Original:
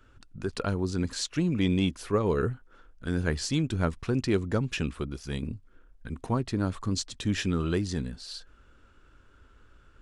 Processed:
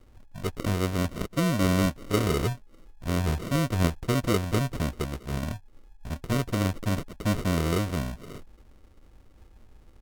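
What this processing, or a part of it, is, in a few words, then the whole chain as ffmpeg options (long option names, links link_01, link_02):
crushed at another speed: -af "lowshelf=frequency=150:gain=5,asetrate=55125,aresample=44100,acrusher=samples=42:mix=1:aa=0.000001,asetrate=35280,aresample=44100"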